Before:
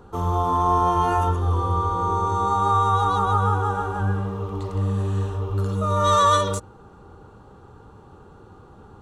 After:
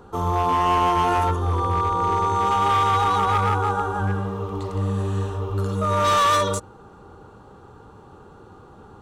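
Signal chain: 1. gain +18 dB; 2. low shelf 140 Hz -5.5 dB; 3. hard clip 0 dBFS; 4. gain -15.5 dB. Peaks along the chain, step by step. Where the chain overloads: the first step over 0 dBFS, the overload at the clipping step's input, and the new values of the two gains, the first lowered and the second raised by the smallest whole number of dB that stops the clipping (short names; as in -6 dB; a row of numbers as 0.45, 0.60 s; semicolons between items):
+10.0, +9.5, 0.0, -15.5 dBFS; step 1, 9.5 dB; step 1 +8 dB, step 4 -5.5 dB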